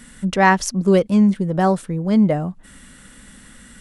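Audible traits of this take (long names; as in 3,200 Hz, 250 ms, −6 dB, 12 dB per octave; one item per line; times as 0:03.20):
background noise floor −46 dBFS
spectral slope −4.5 dB per octave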